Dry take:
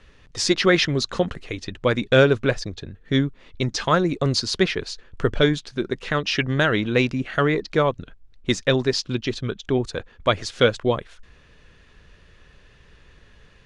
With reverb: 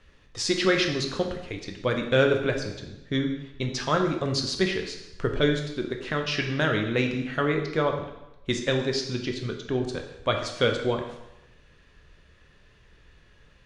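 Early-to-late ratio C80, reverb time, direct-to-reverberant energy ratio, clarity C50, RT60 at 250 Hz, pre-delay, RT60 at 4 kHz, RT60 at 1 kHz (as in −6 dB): 9.0 dB, 0.95 s, 3.5 dB, 6.5 dB, 0.85 s, 7 ms, 0.85 s, 0.95 s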